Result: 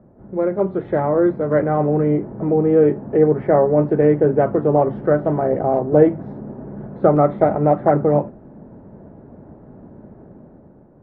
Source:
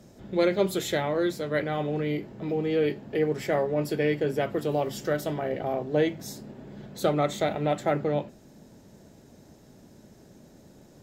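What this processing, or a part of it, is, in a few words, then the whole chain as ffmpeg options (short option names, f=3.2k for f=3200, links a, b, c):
action camera in a waterproof case: -af "lowpass=f=1.3k:w=0.5412,lowpass=f=1.3k:w=1.3066,dynaudnorm=f=190:g=9:m=9dB,volume=2.5dB" -ar 48000 -c:a aac -b:a 48k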